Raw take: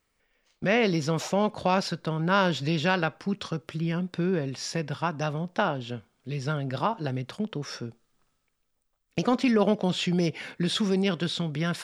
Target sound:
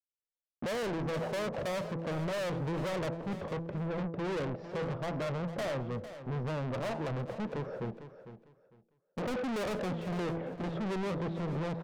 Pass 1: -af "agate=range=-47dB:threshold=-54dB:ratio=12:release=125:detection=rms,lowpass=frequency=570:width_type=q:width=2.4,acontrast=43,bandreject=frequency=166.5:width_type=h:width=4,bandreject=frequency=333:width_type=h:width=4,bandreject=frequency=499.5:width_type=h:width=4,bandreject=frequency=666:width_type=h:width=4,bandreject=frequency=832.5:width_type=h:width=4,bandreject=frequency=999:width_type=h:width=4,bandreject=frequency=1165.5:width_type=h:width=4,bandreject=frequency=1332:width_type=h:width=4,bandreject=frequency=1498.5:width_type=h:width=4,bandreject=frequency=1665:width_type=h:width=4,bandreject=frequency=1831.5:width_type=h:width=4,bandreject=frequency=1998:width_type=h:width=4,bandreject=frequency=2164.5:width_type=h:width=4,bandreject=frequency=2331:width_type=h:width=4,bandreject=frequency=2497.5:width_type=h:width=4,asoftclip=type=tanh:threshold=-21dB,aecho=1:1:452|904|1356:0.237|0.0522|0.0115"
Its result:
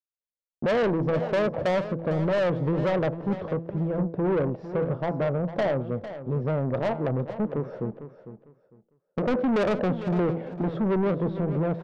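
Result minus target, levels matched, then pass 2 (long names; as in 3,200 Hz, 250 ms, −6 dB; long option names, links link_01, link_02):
soft clipping: distortion −5 dB
-af "agate=range=-47dB:threshold=-54dB:ratio=12:release=125:detection=rms,lowpass=frequency=570:width_type=q:width=2.4,acontrast=43,bandreject=frequency=166.5:width_type=h:width=4,bandreject=frequency=333:width_type=h:width=4,bandreject=frequency=499.5:width_type=h:width=4,bandreject=frequency=666:width_type=h:width=4,bandreject=frequency=832.5:width_type=h:width=4,bandreject=frequency=999:width_type=h:width=4,bandreject=frequency=1165.5:width_type=h:width=4,bandreject=frequency=1332:width_type=h:width=4,bandreject=frequency=1498.5:width_type=h:width=4,bandreject=frequency=1665:width_type=h:width=4,bandreject=frequency=1831.5:width_type=h:width=4,bandreject=frequency=1998:width_type=h:width=4,bandreject=frequency=2164.5:width_type=h:width=4,bandreject=frequency=2331:width_type=h:width=4,bandreject=frequency=2497.5:width_type=h:width=4,asoftclip=type=tanh:threshold=-33dB,aecho=1:1:452|904|1356:0.237|0.0522|0.0115"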